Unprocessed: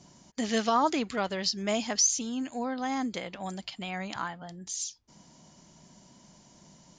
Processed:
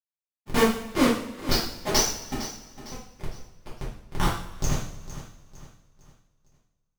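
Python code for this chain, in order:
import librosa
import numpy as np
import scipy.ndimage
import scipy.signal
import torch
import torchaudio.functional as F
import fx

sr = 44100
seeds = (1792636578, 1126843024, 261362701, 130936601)

y = fx.schmitt(x, sr, flips_db=-26.5)
y = fx.granulator(y, sr, seeds[0], grain_ms=230.0, per_s=2.2, spray_ms=100.0, spread_st=0)
y = fx.echo_feedback(y, sr, ms=456, feedback_pct=39, wet_db=-14)
y = fx.rev_double_slope(y, sr, seeds[1], early_s=0.54, late_s=2.1, knee_db=-18, drr_db=-8.5)
y = F.gain(torch.from_numpy(y), 9.0).numpy()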